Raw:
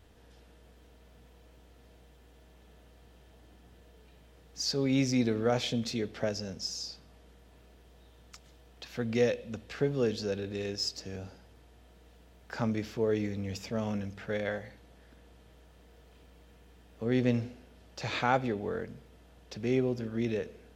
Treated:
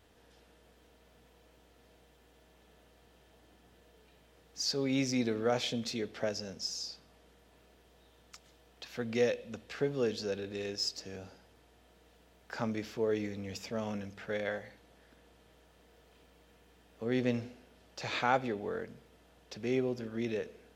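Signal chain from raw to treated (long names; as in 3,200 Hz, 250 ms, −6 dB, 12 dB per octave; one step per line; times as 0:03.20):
low-shelf EQ 170 Hz −9.5 dB
level −1 dB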